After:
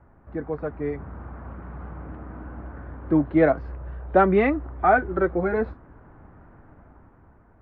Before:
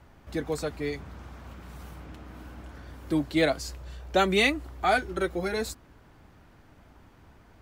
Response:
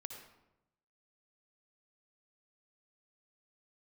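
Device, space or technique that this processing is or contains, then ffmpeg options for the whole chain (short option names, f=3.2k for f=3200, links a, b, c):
action camera in a waterproof case: -af "lowpass=f=1.6k:w=0.5412,lowpass=f=1.6k:w=1.3066,dynaudnorm=f=160:g=11:m=6.5dB" -ar 16000 -c:a aac -b:a 48k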